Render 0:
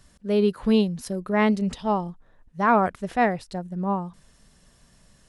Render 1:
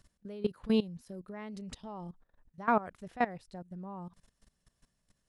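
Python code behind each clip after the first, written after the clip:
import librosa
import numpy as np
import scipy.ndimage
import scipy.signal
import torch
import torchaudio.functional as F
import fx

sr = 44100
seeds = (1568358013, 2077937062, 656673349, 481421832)

y = fx.level_steps(x, sr, step_db=18)
y = y * librosa.db_to_amplitude(-6.5)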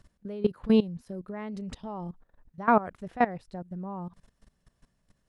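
y = fx.high_shelf(x, sr, hz=2900.0, db=-9.0)
y = y * librosa.db_to_amplitude(6.5)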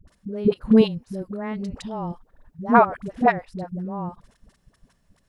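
y = fx.dispersion(x, sr, late='highs', ms=77.0, hz=460.0)
y = y * librosa.db_to_amplitude(7.0)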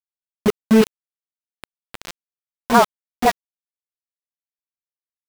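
y = fx.spec_paint(x, sr, seeds[0], shape='rise', start_s=1.52, length_s=0.91, low_hz=330.0, high_hz=3200.0, level_db=-27.0)
y = np.where(np.abs(y) >= 10.0 ** (-17.5 / 20.0), y, 0.0)
y = y * librosa.db_to_amplitude(1.5)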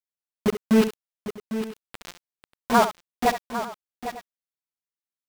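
y = fx.echo_multitap(x, sr, ms=(67, 802, 897), db=(-11.0, -11.0, -19.5))
y = y * librosa.db_to_amplitude(-5.0)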